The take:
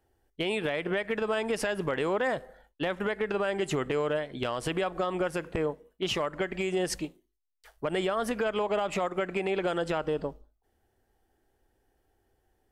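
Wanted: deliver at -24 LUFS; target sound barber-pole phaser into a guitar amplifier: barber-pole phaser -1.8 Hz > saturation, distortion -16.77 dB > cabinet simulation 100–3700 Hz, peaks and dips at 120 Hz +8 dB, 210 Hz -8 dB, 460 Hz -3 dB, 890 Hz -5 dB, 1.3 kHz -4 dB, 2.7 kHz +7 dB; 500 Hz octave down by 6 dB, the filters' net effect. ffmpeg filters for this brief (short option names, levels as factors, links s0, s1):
-filter_complex "[0:a]equalizer=f=500:t=o:g=-5.5,asplit=2[s0][s1];[s1]afreqshift=-1.8[s2];[s0][s2]amix=inputs=2:normalize=1,asoftclip=threshold=0.0376,highpass=100,equalizer=f=120:t=q:w=4:g=8,equalizer=f=210:t=q:w=4:g=-8,equalizer=f=460:t=q:w=4:g=-3,equalizer=f=890:t=q:w=4:g=-5,equalizer=f=1300:t=q:w=4:g=-4,equalizer=f=2700:t=q:w=4:g=7,lowpass=f=3700:w=0.5412,lowpass=f=3700:w=1.3066,volume=5.01"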